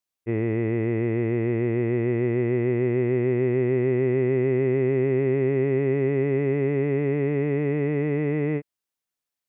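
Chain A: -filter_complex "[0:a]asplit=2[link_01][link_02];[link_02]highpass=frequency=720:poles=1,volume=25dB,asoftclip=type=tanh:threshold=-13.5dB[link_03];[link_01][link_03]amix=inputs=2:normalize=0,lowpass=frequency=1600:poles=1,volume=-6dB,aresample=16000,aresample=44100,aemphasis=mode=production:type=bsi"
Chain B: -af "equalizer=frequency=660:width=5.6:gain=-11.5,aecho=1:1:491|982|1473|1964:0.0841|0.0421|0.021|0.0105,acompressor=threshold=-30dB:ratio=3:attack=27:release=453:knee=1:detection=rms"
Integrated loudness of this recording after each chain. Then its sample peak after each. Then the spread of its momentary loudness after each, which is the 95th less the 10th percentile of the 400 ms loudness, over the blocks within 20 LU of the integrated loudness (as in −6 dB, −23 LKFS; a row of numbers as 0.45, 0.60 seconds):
−22.5, −32.0 LKFS; −17.0, −20.0 dBFS; 2, 2 LU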